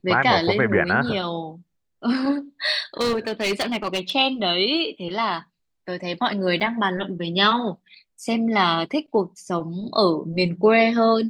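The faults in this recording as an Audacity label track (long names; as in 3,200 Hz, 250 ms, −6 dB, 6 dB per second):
3.000000	4.100000	clipping −19 dBFS
6.600000	6.610000	drop-out 5.9 ms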